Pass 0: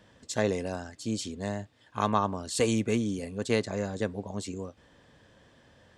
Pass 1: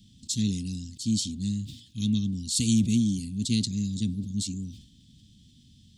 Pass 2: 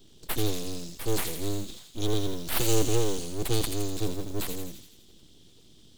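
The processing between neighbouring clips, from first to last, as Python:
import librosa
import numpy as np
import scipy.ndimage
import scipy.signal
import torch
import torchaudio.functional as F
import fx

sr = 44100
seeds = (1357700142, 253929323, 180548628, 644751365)

y1 = scipy.signal.sosfilt(scipy.signal.ellip(3, 1.0, 50, [230.0, 3500.0], 'bandstop', fs=sr, output='sos'), x)
y1 = fx.sustainer(y1, sr, db_per_s=95.0)
y1 = F.gain(torch.from_numpy(y1), 7.0).numpy()
y2 = fx.mod_noise(y1, sr, seeds[0], snr_db=27)
y2 = np.abs(y2)
y2 = fx.echo_wet_highpass(y2, sr, ms=83, feedback_pct=59, hz=2400.0, wet_db=-4.5)
y2 = F.gain(torch.from_numpy(y2), 2.0).numpy()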